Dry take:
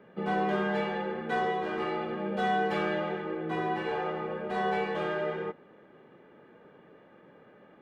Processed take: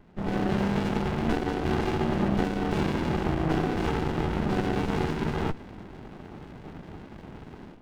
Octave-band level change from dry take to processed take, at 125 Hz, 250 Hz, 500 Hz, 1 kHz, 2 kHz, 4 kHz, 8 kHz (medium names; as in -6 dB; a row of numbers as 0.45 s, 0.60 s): +12.5 dB, +8.0 dB, +0.5 dB, -1.5 dB, -1.5 dB, +3.5 dB, no reading